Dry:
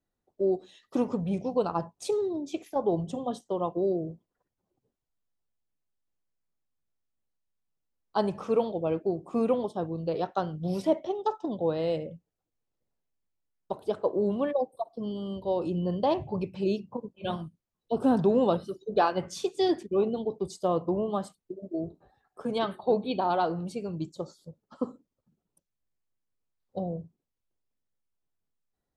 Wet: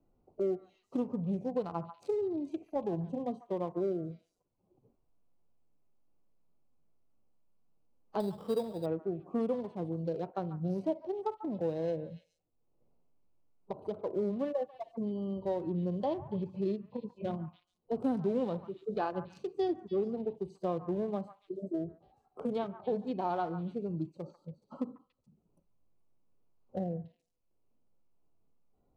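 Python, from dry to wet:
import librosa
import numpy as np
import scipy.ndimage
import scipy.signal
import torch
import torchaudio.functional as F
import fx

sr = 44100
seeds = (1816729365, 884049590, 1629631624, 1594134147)

y = fx.wiener(x, sr, points=25)
y = fx.hpss(y, sr, part='percussive', gain_db=-10)
y = fx.echo_stepped(y, sr, ms=141, hz=1200.0, octaves=1.4, feedback_pct=70, wet_db=-11.0)
y = fx.sample_hold(y, sr, seeds[0], rate_hz=4300.0, jitter_pct=0, at=(8.2, 8.86))
y = fx.band_squash(y, sr, depth_pct=70)
y = y * 10.0 ** (-4.0 / 20.0)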